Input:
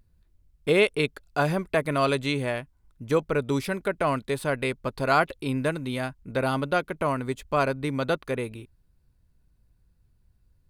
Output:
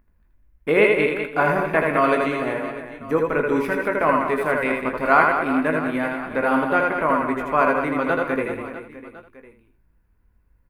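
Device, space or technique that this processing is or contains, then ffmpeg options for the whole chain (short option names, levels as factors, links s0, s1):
slapback doubling: -filter_complex "[0:a]asplit=3[s0][s1][s2];[s1]adelay=19,volume=0.398[s3];[s2]adelay=82,volume=0.299[s4];[s0][s3][s4]amix=inputs=3:normalize=0,asettb=1/sr,asplit=3[s5][s6][s7];[s5]atrim=end=2.284[s8];[s6]atrim=start=2.28:end=3.26,asetpts=PTS-STARTPTS,afade=t=in:d=0.004:c=qsin,afade=t=out:st=0.976:d=0.004:c=qsin,equalizer=f=2300:t=o:w=2.3:g=-5.5[s9];[s7]atrim=start=3.256[s10];[s8][s9]acrossfade=d=0.004:c1=hsin:c2=qsin[s11];[s11][s10]acrossfade=d=0.004:c1=qsin:c2=hsin,equalizer=f=125:t=o:w=1:g=-9,equalizer=f=250:t=o:w=1:g=5,equalizer=f=1000:t=o:w=1:g=5,equalizer=f=2000:t=o:w=1:g=8,equalizer=f=4000:t=o:w=1:g=-12,equalizer=f=8000:t=o:w=1:g=-9,aecho=1:1:80|200|380|650|1055:0.631|0.398|0.251|0.158|0.1"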